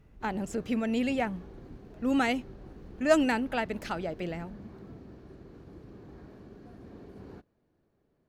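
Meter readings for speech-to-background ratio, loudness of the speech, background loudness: 19.5 dB, -30.0 LUFS, -49.5 LUFS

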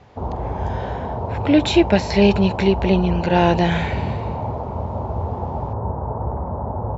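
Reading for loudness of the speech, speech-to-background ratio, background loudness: -18.5 LUFS, 8.0 dB, -26.5 LUFS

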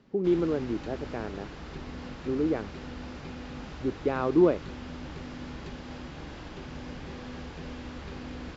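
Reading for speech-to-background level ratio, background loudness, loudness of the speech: 13.0 dB, -41.5 LUFS, -28.5 LUFS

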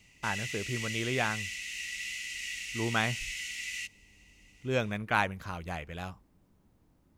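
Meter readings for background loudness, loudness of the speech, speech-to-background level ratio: -36.5 LUFS, -33.5 LUFS, 3.0 dB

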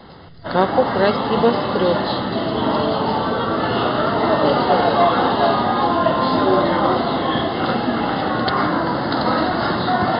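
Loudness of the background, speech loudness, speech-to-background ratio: -18.5 LUFS, -20.5 LUFS, -2.0 dB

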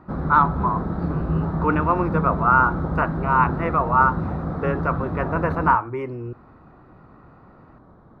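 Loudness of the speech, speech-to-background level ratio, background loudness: -22.0 LUFS, 4.5 dB, -26.5 LUFS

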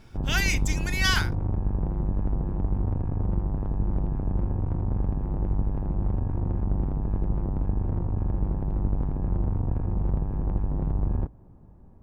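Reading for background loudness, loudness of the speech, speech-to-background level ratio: -29.0 LUFS, -27.0 LUFS, 2.0 dB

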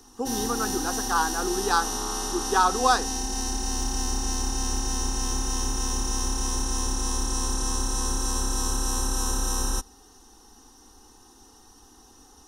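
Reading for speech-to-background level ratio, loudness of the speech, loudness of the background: 2.0 dB, -26.0 LUFS, -28.0 LUFS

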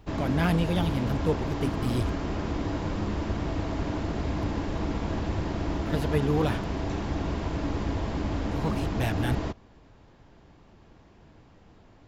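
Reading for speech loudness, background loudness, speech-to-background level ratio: -30.0 LUFS, -31.0 LUFS, 1.0 dB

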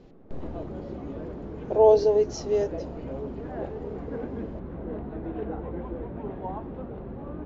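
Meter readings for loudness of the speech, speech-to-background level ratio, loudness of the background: -22.5 LUFS, 13.5 dB, -36.0 LUFS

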